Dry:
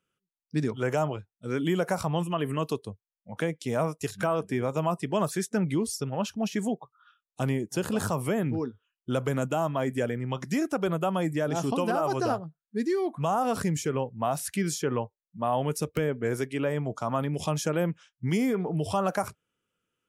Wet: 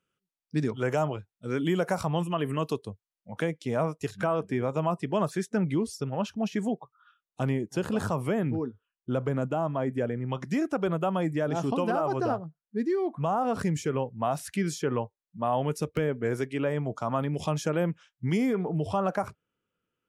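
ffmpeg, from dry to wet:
-af "asetnsamples=n=441:p=0,asendcmd='3.57 lowpass f 3100;8.57 lowpass f 1200;10.29 lowpass f 2900;12.02 lowpass f 1700;13.59 lowpass f 4300;18.68 lowpass f 2000',lowpass=f=7600:p=1"

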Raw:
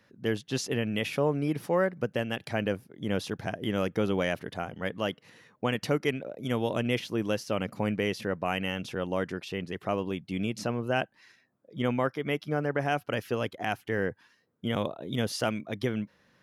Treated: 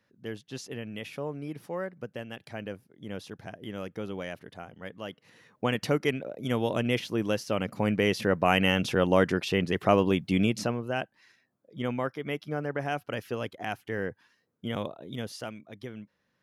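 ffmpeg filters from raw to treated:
-af "volume=2.51,afade=t=in:st=5.07:d=0.57:silence=0.334965,afade=t=in:st=7.72:d=0.98:silence=0.446684,afade=t=out:st=10.3:d=0.53:silence=0.281838,afade=t=out:st=14.78:d=0.78:silence=0.398107"

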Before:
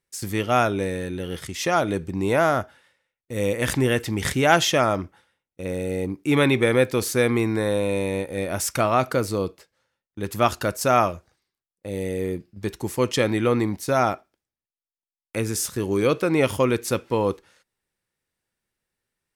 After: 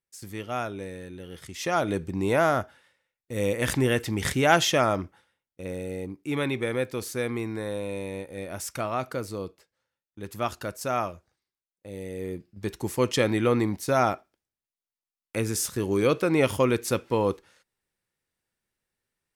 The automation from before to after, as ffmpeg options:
-af "volume=1.68,afade=t=in:st=1.34:d=0.58:silence=0.375837,afade=t=out:st=5.02:d=1.16:silence=0.473151,afade=t=in:st=12.09:d=0.76:silence=0.446684"

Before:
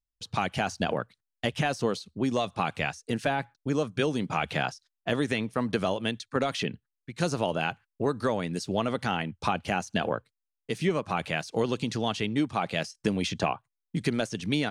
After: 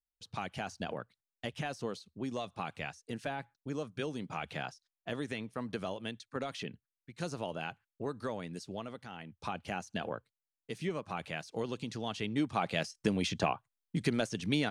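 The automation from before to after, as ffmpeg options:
-af "volume=1.78,afade=t=out:st=8.52:d=0.57:silence=0.375837,afade=t=in:st=9.09:d=0.53:silence=0.334965,afade=t=in:st=12.04:d=0.55:silence=0.501187"

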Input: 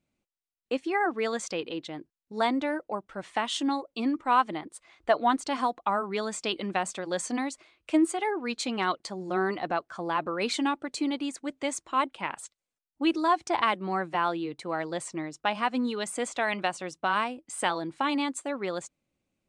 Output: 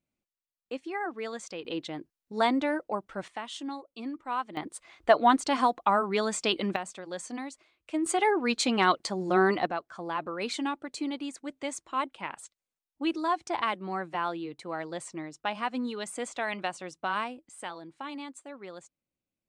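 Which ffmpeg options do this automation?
-af "asetnsamples=n=441:p=0,asendcmd='1.65 volume volume 1dB;3.28 volume volume -9dB;4.57 volume volume 3dB;6.76 volume volume -7dB;8.06 volume volume 4.5dB;9.66 volume volume -4dB;17.49 volume volume -11.5dB',volume=0.447"

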